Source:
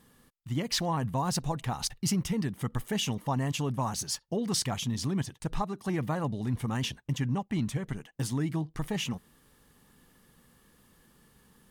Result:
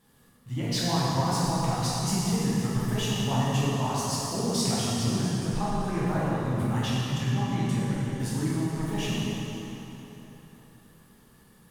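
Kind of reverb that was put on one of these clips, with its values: plate-style reverb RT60 3.8 s, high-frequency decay 0.7×, DRR -9 dB; gain -5.5 dB

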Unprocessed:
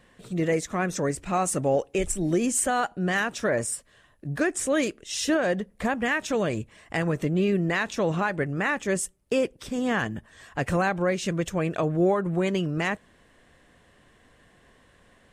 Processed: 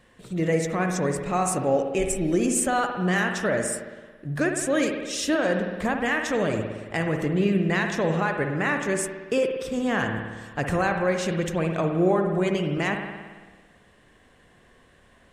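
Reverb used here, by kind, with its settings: spring tank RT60 1.4 s, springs 55 ms, chirp 50 ms, DRR 4 dB

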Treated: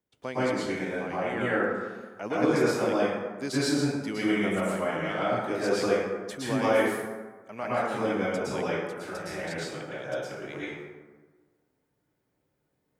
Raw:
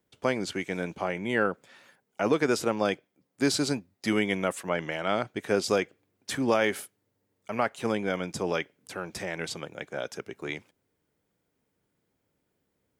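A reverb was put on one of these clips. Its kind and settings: plate-style reverb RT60 1.4 s, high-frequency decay 0.45×, pre-delay 0.1 s, DRR -9.5 dB; gain -9.5 dB

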